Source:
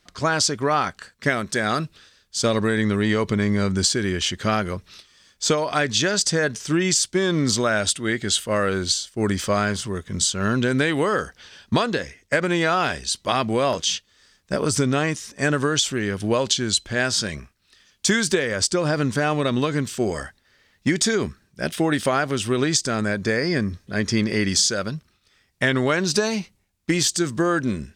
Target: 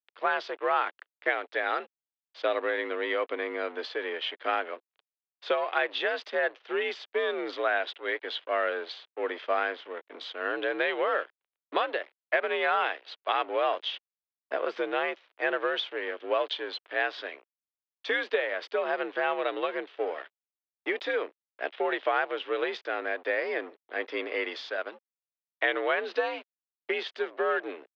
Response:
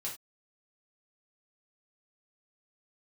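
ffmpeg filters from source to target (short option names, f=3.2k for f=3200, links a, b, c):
-af "aeval=exprs='sgn(val(0))*max(abs(val(0))-0.0168,0)':c=same,highpass=f=340:t=q:w=0.5412,highpass=f=340:t=q:w=1.307,lowpass=f=3.3k:t=q:w=0.5176,lowpass=f=3.3k:t=q:w=0.7071,lowpass=f=3.3k:t=q:w=1.932,afreqshift=64,volume=-4dB"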